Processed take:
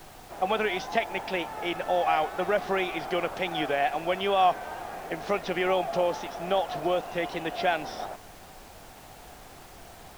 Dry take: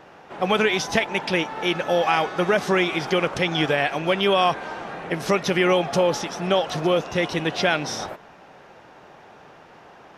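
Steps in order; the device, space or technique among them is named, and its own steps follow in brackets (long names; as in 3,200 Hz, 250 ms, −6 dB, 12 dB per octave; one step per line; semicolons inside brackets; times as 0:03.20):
horn gramophone (band-pass filter 220–3,900 Hz; parametric band 720 Hz +8.5 dB 0.36 octaves; tape wow and flutter; pink noise bed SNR 20 dB)
level −7.5 dB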